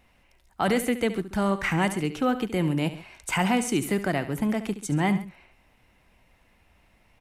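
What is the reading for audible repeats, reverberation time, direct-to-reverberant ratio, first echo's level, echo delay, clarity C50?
2, no reverb audible, no reverb audible, −13.0 dB, 71 ms, no reverb audible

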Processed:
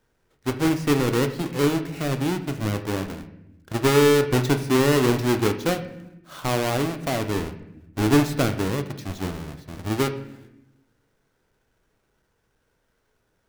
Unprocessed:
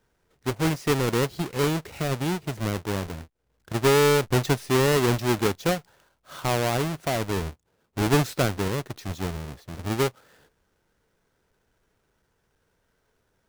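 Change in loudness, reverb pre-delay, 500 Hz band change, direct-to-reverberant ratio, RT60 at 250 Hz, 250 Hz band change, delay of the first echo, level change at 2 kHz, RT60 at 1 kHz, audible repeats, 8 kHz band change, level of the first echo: +2.0 dB, 3 ms, +1.5 dB, 11.0 dB, 1.4 s, +4.5 dB, no echo audible, +1.0 dB, 0.75 s, no echo audible, 0.0 dB, no echo audible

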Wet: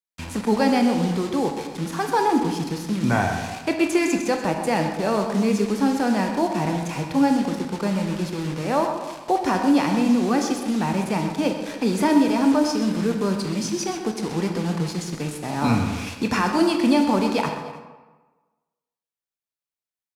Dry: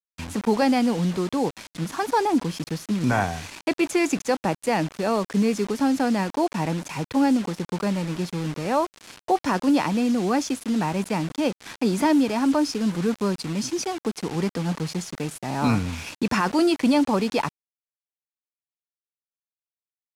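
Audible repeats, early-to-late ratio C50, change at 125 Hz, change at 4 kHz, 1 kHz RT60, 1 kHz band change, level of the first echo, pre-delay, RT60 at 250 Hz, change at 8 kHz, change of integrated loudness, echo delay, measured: 2, 5.0 dB, +1.5 dB, +1.5 dB, 1.3 s, +2.0 dB, −11.5 dB, 15 ms, 1.2 s, +1.0 dB, +1.5 dB, 128 ms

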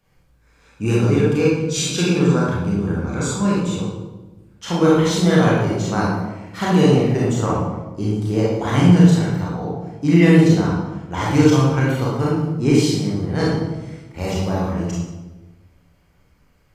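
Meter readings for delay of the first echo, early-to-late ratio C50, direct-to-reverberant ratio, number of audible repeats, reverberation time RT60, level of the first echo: no echo audible, −1.5 dB, −6.0 dB, no echo audible, 1.1 s, no echo audible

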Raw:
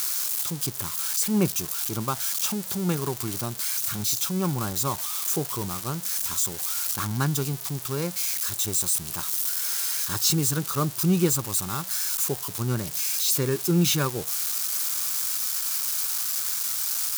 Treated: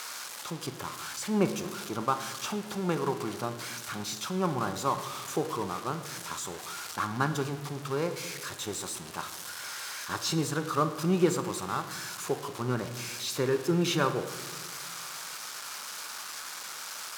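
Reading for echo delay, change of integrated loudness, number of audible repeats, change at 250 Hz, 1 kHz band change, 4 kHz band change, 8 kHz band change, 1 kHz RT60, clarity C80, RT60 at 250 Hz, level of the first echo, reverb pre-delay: no echo audible, −8.0 dB, no echo audible, −4.0 dB, +2.0 dB, −6.5 dB, −12.0 dB, 1.2 s, 12.0 dB, 2.0 s, no echo audible, 25 ms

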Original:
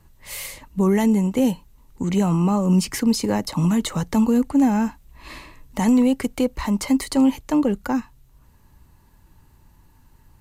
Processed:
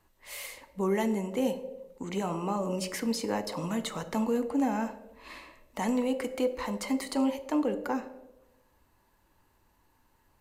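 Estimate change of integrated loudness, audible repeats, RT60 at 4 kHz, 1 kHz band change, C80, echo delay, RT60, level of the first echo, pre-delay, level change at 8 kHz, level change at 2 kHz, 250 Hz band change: −10.5 dB, no echo audible, 0.60 s, −6.0 dB, 13.0 dB, no echo audible, 1.0 s, no echo audible, 3 ms, −9.5 dB, −6.0 dB, −12.0 dB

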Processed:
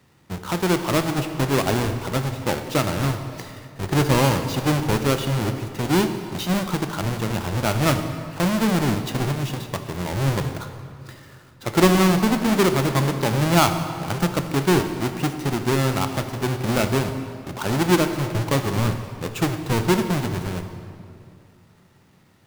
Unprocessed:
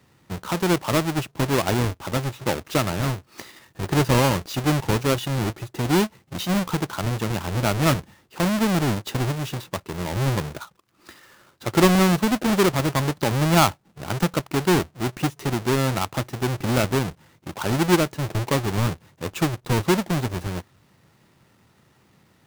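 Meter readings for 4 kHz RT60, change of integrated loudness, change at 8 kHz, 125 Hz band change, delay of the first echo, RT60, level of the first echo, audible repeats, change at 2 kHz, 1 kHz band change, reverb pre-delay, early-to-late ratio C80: 1.7 s, +1.0 dB, +0.5 dB, +1.0 dB, no echo audible, 2.4 s, no echo audible, no echo audible, +0.5 dB, +1.0 dB, 21 ms, 9.0 dB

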